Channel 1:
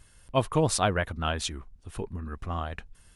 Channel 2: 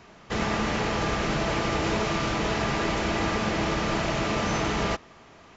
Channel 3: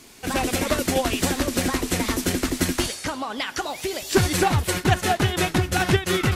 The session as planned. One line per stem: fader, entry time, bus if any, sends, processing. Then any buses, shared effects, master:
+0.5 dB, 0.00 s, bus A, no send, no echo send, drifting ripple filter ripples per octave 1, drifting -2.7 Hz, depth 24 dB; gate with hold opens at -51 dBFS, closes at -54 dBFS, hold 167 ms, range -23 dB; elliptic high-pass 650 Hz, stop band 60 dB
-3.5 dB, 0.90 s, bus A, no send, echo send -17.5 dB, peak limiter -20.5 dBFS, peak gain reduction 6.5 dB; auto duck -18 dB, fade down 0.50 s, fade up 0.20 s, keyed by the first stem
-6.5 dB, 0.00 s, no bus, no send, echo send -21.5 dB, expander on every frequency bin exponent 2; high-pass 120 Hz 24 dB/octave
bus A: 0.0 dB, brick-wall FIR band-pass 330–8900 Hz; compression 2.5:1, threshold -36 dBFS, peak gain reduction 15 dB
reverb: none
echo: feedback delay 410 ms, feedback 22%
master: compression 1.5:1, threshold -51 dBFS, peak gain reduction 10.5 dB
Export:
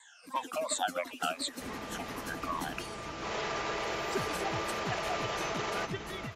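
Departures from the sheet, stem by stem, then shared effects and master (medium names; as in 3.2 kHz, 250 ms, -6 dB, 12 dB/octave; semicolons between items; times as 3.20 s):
stem 2 -3.5 dB -> +3.0 dB; stem 3 -6.5 dB -> -14.0 dB; master: missing compression 1.5:1, threshold -51 dBFS, peak gain reduction 10.5 dB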